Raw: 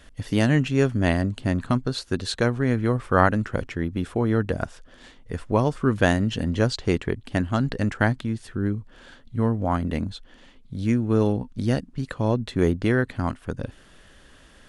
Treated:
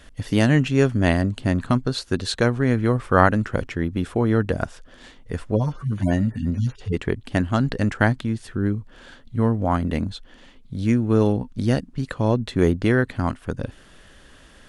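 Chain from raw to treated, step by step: 5.51–6.97 s: harmonic-percussive separation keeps harmonic; trim +2.5 dB

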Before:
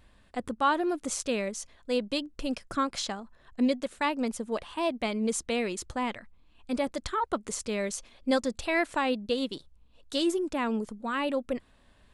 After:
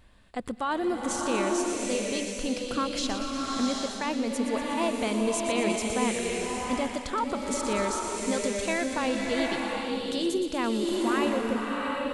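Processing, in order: peak limiter -22.5 dBFS, peak gain reduction 8.5 dB; feedback echo behind a high-pass 119 ms, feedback 69%, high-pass 2.7 kHz, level -8.5 dB; swelling reverb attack 770 ms, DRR -0.5 dB; trim +1.5 dB

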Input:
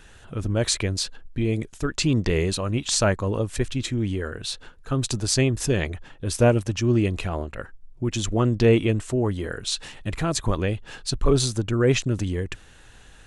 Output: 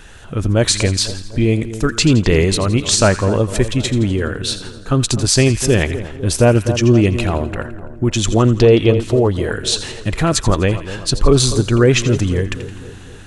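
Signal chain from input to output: 8.62–9.36 s: graphic EQ 250/500/2000/4000/8000 Hz -5/+5/-6/+7/-11 dB; two-band feedback delay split 1.3 kHz, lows 250 ms, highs 84 ms, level -13 dB; loudness maximiser +10 dB; trim -1 dB

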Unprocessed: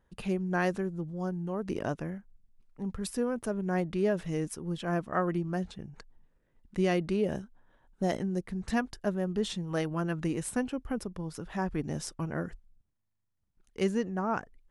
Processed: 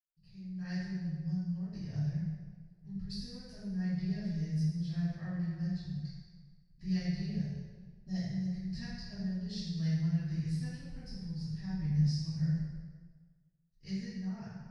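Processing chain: gate with hold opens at -54 dBFS; FFT filter 100 Hz 0 dB, 150 Hz +9 dB, 260 Hz -21 dB, 800 Hz -20 dB, 1.2 kHz -26 dB, 1.9 kHz -8 dB, 3.2 kHz -16 dB, 4.7 kHz +8 dB, 7.6 kHz -18 dB, 11 kHz -21 dB; level rider gain up to 15 dB; reverberation RT60 1.5 s, pre-delay 46 ms, DRR -60 dB; trim -9 dB

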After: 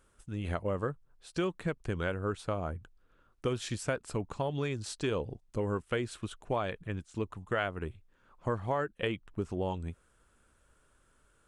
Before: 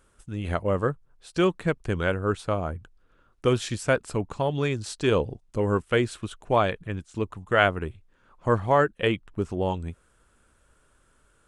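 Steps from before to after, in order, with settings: compression 4:1, threshold -24 dBFS, peak gain reduction 9 dB; trim -4.5 dB

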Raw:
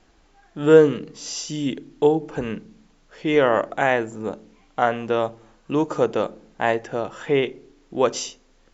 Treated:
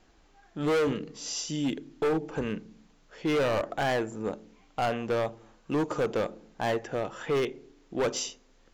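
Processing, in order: hard clipper -19.5 dBFS, distortion -5 dB; trim -3.5 dB

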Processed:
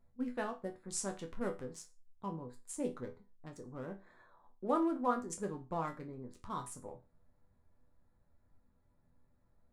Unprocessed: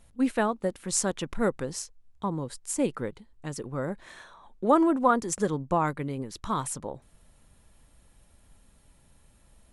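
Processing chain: local Wiener filter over 15 samples; chord resonator E2 minor, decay 0.27 s

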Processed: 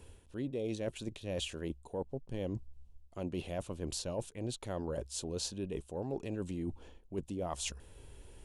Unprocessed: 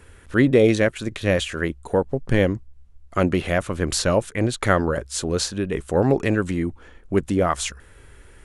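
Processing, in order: high-order bell 1.6 kHz -11.5 dB 1.1 oct; reverse; compression 6:1, threshold -30 dBFS, peak gain reduction 17.5 dB; reverse; trim -5.5 dB

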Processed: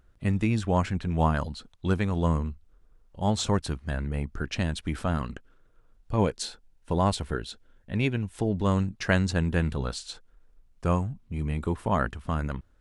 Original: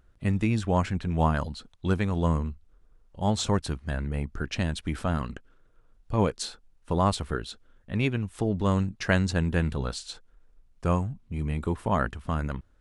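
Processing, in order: 6.17–8.65 s: band-stop 1.2 kHz, Q 6.4

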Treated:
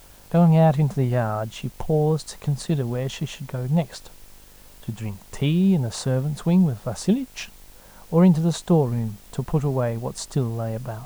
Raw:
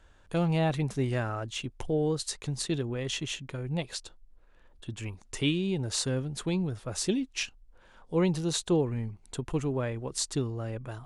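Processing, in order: FFT filter 110 Hz 0 dB, 200 Hz +7 dB, 290 Hz -7 dB, 690 Hz +5 dB, 2.5 kHz -9 dB; mains buzz 50 Hz, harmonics 20, -63 dBFS -4 dB/octave; in parallel at -7.5 dB: word length cut 8-bit, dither triangular; on the sum: trim +4 dB

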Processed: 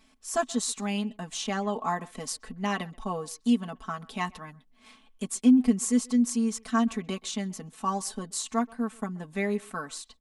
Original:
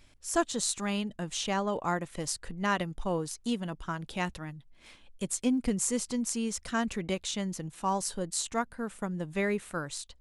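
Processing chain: bass shelf 200 Hz -9 dB; comb 4.6 ms, depth 88%; small resonant body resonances 250/770/1100 Hz, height 12 dB, ringing for 60 ms; speakerphone echo 130 ms, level -23 dB; trim -3 dB

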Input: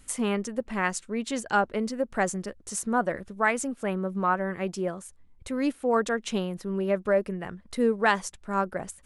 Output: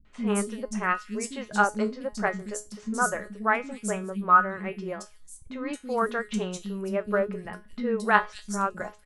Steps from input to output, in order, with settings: dynamic bell 1.3 kHz, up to +6 dB, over -40 dBFS, Q 2.2; feedback comb 210 Hz, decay 0.25 s, harmonics all, mix 80%; three bands offset in time lows, mids, highs 50/270 ms, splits 280/3900 Hz; trim +8.5 dB

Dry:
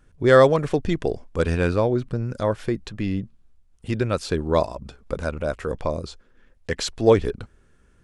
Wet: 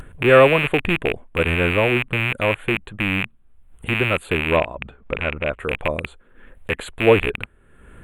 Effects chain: rattle on loud lows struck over -30 dBFS, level -10 dBFS; Butterworth band-stop 5.4 kHz, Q 0.89; bass shelf 340 Hz -3 dB; upward compressor, threshold -31 dBFS; vibrato 0.31 Hz 12 cents; 4.56–5.59 s: distance through air 110 m; trim +2.5 dB; Vorbis 192 kbps 48 kHz

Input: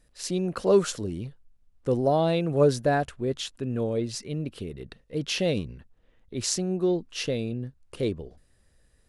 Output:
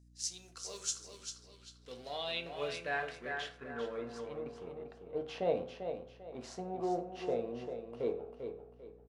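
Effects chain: companding laws mixed up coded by A; feedback delay 395 ms, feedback 32%, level -7.5 dB; band-pass sweep 6.2 kHz -> 750 Hz, 1.04–4.99 s; reverberation RT60 0.50 s, pre-delay 3 ms, DRR 4 dB; hum 60 Hz, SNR 21 dB; trim +1.5 dB

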